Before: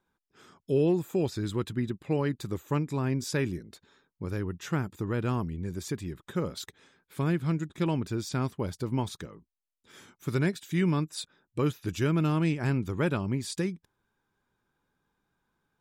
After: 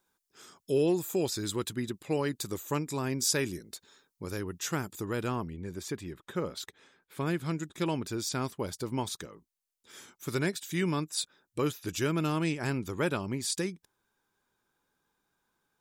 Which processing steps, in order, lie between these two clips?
tone controls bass -7 dB, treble +12 dB, from 5.27 s treble -1 dB, from 7.26 s treble +7 dB

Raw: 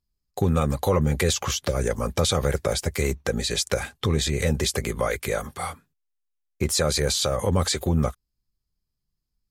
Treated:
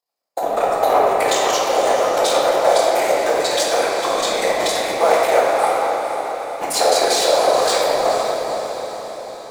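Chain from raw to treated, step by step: cycle switcher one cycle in 3, muted; overload inside the chain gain 18.5 dB; resonant high-pass 680 Hz, resonance Q 4.5; whisper effect; echo that smears into a reverb 474 ms, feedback 55%, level -9 dB; reverberation RT60 3.2 s, pre-delay 6 ms, DRR -5 dB; trim +2.5 dB

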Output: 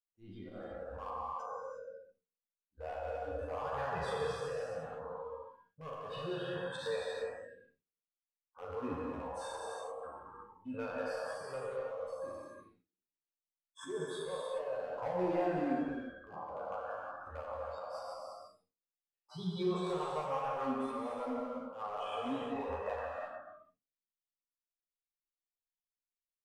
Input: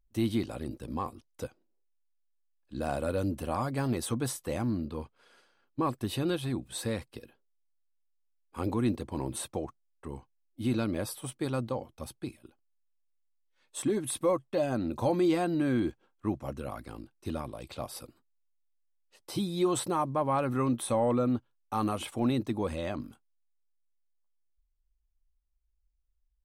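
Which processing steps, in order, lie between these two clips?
spectral sustain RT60 1.12 s; spectral noise reduction 27 dB; gate with hold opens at -53 dBFS; low-pass 2.6 kHz 12 dB/octave; compression 3:1, threshold -45 dBFS, peak gain reduction 17 dB; hard clipper -37 dBFS, distortion -20 dB; rotary cabinet horn 0.7 Hz, later 6.7 Hz, at 15.76 s; slow attack 110 ms; early reflections 11 ms -4.5 dB, 38 ms -12 dB; gated-style reverb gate 380 ms flat, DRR -2 dB; trim +4 dB

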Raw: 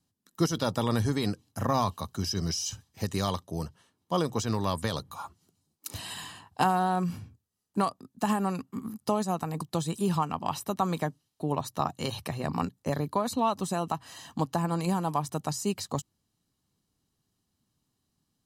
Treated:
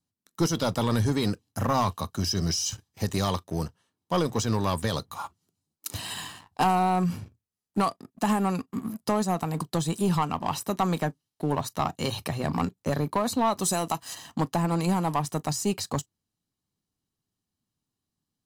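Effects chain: 13.59–14.15 s: tone controls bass -3 dB, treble +10 dB; waveshaping leveller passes 2; on a send: reverberation, pre-delay 3 ms, DRR 21 dB; on the sum: trim -3.5 dB

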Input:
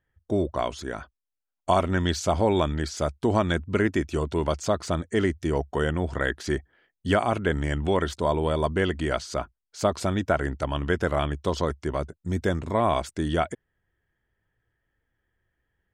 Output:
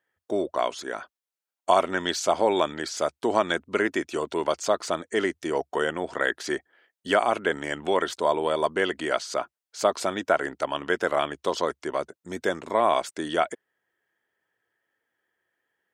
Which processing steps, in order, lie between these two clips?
high-pass 390 Hz 12 dB/octave; trim +2.5 dB

